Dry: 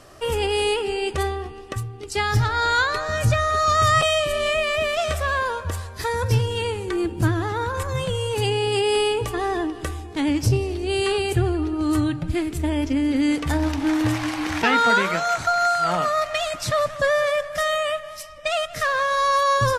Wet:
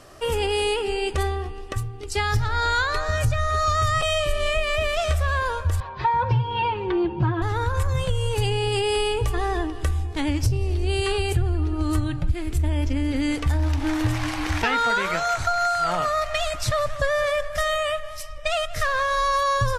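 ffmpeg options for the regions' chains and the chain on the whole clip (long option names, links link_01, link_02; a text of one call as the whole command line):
ffmpeg -i in.wav -filter_complex "[0:a]asettb=1/sr,asplit=3[link_01][link_02][link_03];[link_01]atrim=end=5.804[link_04];[link_02]atrim=start=5.8:end=7.42,asetpts=PTS-STARTPTS,afade=type=in:duration=0.004:curve=qsin,afade=type=out:start_time=1.616:duration=0.004:curve=qsin,highpass=100,equalizer=frequency=130:width_type=q:width=4:gain=8,equalizer=frequency=960:width_type=q:width=4:gain=9,equalizer=frequency=1900:width_type=q:width=4:gain=-4,lowpass=frequency=3300:width=0.5412,lowpass=frequency=3300:width=1.3066,aecho=1:1:5.5:0.8,atrim=end_sample=71442[link_05];[link_03]atrim=start=7.416[link_06];[link_04][link_05]acrossfade=duration=0.004:curve1=hsin:curve2=qsin[link_07];[link_07][link_06]acrossfade=duration=0.004:curve1=qsin:curve2=hsin,asubboost=boost=9:cutoff=65,acompressor=threshold=-18dB:ratio=6" out.wav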